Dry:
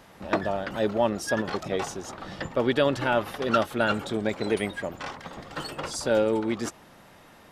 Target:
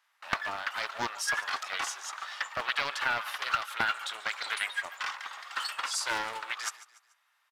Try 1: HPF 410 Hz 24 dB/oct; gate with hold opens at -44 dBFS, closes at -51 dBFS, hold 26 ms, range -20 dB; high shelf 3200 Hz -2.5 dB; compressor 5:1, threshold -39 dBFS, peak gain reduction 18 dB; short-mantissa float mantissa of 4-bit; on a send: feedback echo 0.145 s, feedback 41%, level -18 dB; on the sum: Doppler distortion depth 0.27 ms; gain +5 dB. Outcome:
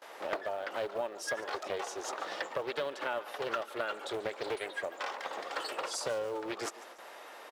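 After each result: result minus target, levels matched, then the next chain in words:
500 Hz band +14.5 dB; compressor: peak gain reduction +8 dB
HPF 1100 Hz 24 dB/oct; gate with hold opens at -44 dBFS, closes at -51 dBFS, hold 26 ms, range -20 dB; high shelf 3200 Hz -2.5 dB; compressor 5:1, threshold -39 dBFS, peak gain reduction 17 dB; short-mantissa float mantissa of 4-bit; on a send: feedback echo 0.145 s, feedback 41%, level -18 dB; on the sum: Doppler distortion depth 0.27 ms; gain +5 dB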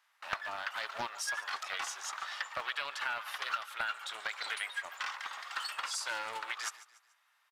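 compressor: peak gain reduction +7 dB
HPF 1100 Hz 24 dB/oct; gate with hold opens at -44 dBFS, closes at -51 dBFS, hold 26 ms, range -20 dB; high shelf 3200 Hz -2.5 dB; compressor 5:1, threshold -30.5 dBFS, peak gain reduction 10 dB; short-mantissa float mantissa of 4-bit; on a send: feedback echo 0.145 s, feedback 41%, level -18 dB; on the sum: Doppler distortion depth 0.27 ms; gain +5 dB

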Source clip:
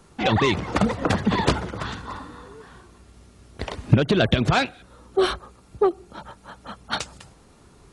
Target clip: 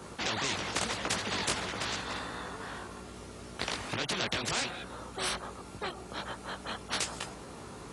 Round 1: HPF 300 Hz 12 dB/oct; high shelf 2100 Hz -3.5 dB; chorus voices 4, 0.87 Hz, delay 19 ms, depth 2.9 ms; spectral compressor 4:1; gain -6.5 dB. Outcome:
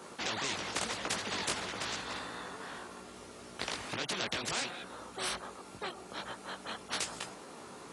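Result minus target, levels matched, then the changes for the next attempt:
125 Hz band -4.0 dB
change: HPF 99 Hz 12 dB/oct

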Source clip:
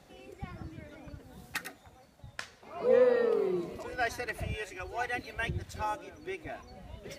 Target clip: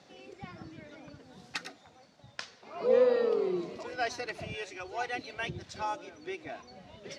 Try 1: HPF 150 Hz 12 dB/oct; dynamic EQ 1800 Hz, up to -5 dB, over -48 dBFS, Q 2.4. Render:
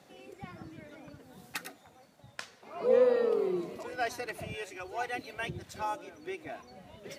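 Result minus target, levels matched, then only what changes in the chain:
4000 Hz band -3.0 dB
add after dynamic EQ: synth low-pass 5300 Hz, resonance Q 1.6

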